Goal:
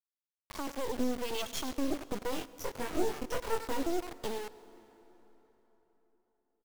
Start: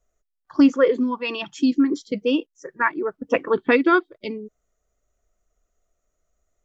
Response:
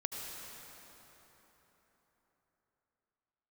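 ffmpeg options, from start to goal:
-filter_complex "[0:a]equalizer=frequency=500:width_type=o:width=1:gain=8,equalizer=frequency=1000:width_type=o:width=1:gain=-5,equalizer=frequency=2000:width_type=o:width=1:gain=-12,equalizer=frequency=4000:width_type=o:width=1:gain=8,asettb=1/sr,asplit=3[link_01][link_02][link_03];[link_01]atrim=end=0.674[link_04];[link_02]atrim=start=0.67:end=1.57,asetpts=PTS-STARTPTS,afade=type=in:duration=0.004:curve=qsin,afade=type=out:start_time=0.896:duration=0.004:curve=qsin,acrossover=split=270|800|3200[link_05][link_06][link_07][link_08];[link_05]acompressor=threshold=-32dB:ratio=4[link_09];[link_06]acompressor=threshold=-19dB:ratio=4[link_10];[link_07]acompressor=threshold=-37dB:ratio=4[link_11];[link_08]acompressor=threshold=-41dB:ratio=4[link_12];[link_09][link_10][link_11][link_12]amix=inputs=4:normalize=0[link_13];[link_03]atrim=start=1.566[link_14];[link_04][link_13]acrossfade=duration=0.004:curve1=hsin:curve2=qsin[link_15];[link_15][link_14]acrossfade=duration=0.004:curve1=qsin:curve2=hsin,asplit=2[link_16][link_17];[link_17]alimiter=limit=-10.5dB:level=0:latency=1:release=200,volume=-2.5dB[link_18];[link_16][link_18]amix=inputs=2:normalize=0,acompressor=threshold=-25dB:ratio=3,asoftclip=type=hard:threshold=-22dB,acrossover=split=460[link_19][link_20];[link_19]aeval=exprs='val(0)*(1-1/2+1/2*cos(2*PI*1*n/s))':channel_layout=same[link_21];[link_20]aeval=exprs='val(0)*(1-1/2-1/2*cos(2*PI*1*n/s))':channel_layout=same[link_22];[link_21][link_22]amix=inputs=2:normalize=0,aecho=1:1:99|198:0.178|0.0391,acrusher=bits=4:dc=4:mix=0:aa=0.000001,asettb=1/sr,asplit=3[link_23][link_24][link_25];[link_23]atrim=end=2.304[link_26];[link_24]atrim=start=2.3:end=3.83,asetpts=PTS-STARTPTS,afade=type=in:duration=0.004:curve=qsin,afade=type=out:start_time=1.526:duration=0.004:curve=qsin,asplit=2[link_27][link_28];[link_28]adelay=22,volume=-3dB[link_29];[link_27][link_29]amix=inputs=2:normalize=0,atrim=end_sample=67473[link_30];[link_25]atrim=start=3.826[link_31];[link_26][link_30]acrossfade=duration=0.004:curve1=hsin:curve2=qsin[link_32];[link_32][link_31]acrossfade=duration=0.004:curve1=qsin:curve2=hsin,asplit=2[link_33][link_34];[1:a]atrim=start_sample=2205[link_35];[link_34][link_35]afir=irnorm=-1:irlink=0,volume=-15dB[link_36];[link_33][link_36]amix=inputs=2:normalize=0"

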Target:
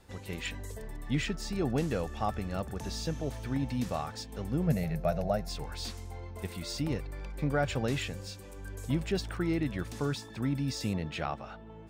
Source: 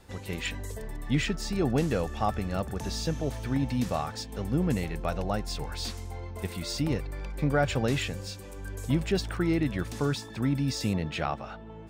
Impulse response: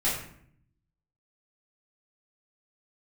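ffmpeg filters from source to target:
-filter_complex "[0:a]asettb=1/sr,asplit=3[link_01][link_02][link_03];[link_01]atrim=end=4.674[link_04];[link_02]atrim=start=4.67:end=5.49,asetpts=PTS-STARTPTS,afade=type=in:duration=0.004:curve=qsin,afade=type=out:start_time=0.816:duration=0.004:curve=qsin,equalizer=frequency=160:width_type=o:width=0.33:gain=11,equalizer=frequency=315:width_type=o:width=0.33:gain=-10,equalizer=frequency=630:width_type=o:width=0.33:gain=12,equalizer=frequency=1000:width_type=o:width=0.33:gain=-9,equalizer=frequency=3150:width_type=o:width=0.33:gain=-8,equalizer=frequency=8000:width_type=o:width=0.33:gain=-6,equalizer=frequency=12500:width_type=o:width=0.33:gain=8[link_05];[link_03]atrim=start=5.486[link_06];[link_04][link_05]acrossfade=duration=0.004:curve1=hsin:curve2=qsin[link_07];[link_07][link_06]acrossfade=duration=0.004:curve1=qsin:curve2=hsin,volume=-4dB"

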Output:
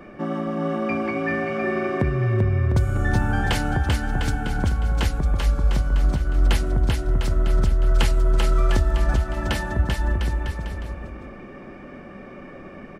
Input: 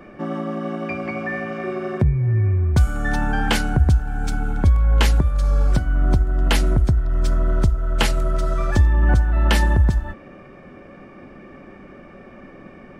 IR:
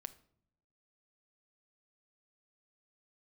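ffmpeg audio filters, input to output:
-af "acompressor=threshold=-19dB:ratio=6,aecho=1:1:390|702|951.6|1151|1311:0.631|0.398|0.251|0.158|0.1"

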